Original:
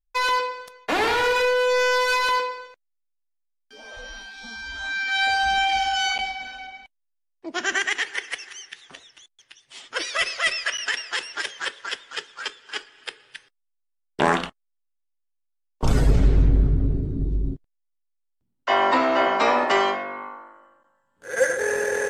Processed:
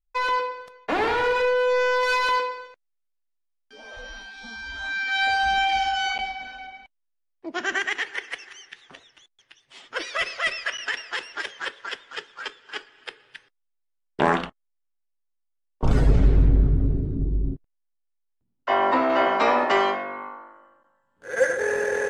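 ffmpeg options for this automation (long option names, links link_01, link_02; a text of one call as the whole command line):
ffmpeg -i in.wav -af "asetnsamples=nb_out_samples=441:pad=0,asendcmd='2.03 lowpass f 4100;5.91 lowpass f 2500;14.45 lowpass f 1400;15.91 lowpass f 2900;17.15 lowpass f 1600;19.1 lowpass f 3500',lowpass=frequency=1800:poles=1" out.wav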